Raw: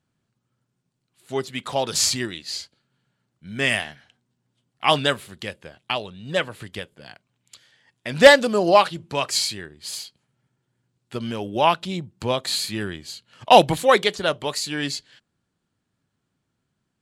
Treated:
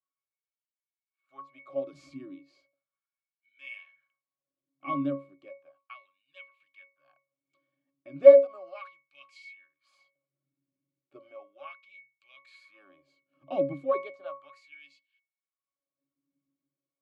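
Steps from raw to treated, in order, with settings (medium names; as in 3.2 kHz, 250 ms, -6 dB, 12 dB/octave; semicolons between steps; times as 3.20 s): pitch-class resonator C#, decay 0.29 s; LFO high-pass sine 0.35 Hz 250–2800 Hz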